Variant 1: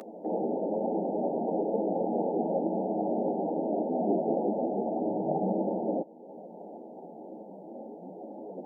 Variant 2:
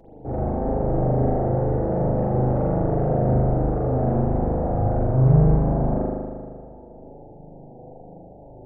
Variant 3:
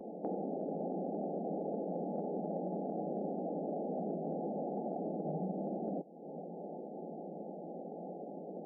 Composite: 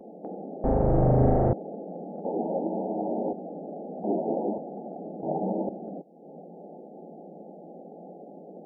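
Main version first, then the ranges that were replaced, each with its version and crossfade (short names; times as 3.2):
3
0.64–1.53 from 2
2.25–3.33 from 1
4.04–4.58 from 1
5.23–5.69 from 1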